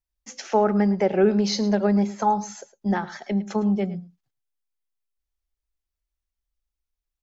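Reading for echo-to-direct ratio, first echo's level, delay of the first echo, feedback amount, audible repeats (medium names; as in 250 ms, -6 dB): -17.0 dB, -17.0 dB, 108 ms, no regular repeats, 1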